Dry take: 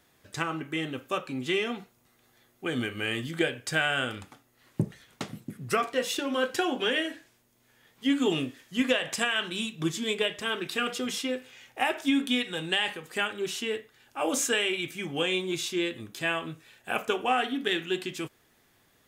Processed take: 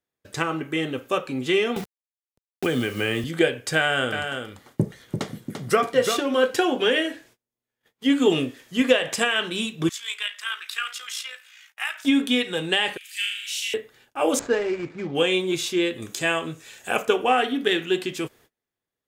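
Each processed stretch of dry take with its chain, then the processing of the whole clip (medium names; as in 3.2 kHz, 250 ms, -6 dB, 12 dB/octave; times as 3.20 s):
1.76–3.24 s: tone controls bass +3 dB, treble +1 dB + word length cut 8-bit, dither none + three bands compressed up and down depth 70%
3.78–6.22 s: band-stop 2.6 kHz, Q 11 + delay 342 ms -6.5 dB
9.89–12.05 s: Chebyshev high-pass 1.3 kHz, order 3 + AM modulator 57 Hz, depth 30%
12.97–13.74 s: steep high-pass 2.2 kHz + upward compressor, threshold -44 dBFS + flutter echo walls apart 6.7 m, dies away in 0.81 s
14.39–15.15 s: median filter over 15 samples + distance through air 130 m
16.02–17.03 s: peaking EQ 7 kHz +9.5 dB 0.68 oct + tape noise reduction on one side only encoder only
whole clip: gate -58 dBFS, range -29 dB; peaking EQ 470 Hz +5 dB 0.72 oct; trim +4.5 dB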